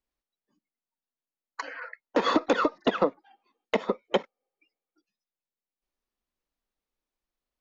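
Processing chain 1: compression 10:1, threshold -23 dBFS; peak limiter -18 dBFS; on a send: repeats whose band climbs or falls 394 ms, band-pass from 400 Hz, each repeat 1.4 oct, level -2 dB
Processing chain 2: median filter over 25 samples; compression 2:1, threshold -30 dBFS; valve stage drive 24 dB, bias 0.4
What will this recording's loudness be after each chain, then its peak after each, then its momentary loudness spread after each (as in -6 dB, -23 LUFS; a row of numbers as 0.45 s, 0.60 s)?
-34.0 LUFS, -38.0 LUFS; -16.5 dBFS, -21.5 dBFS; 18 LU, 12 LU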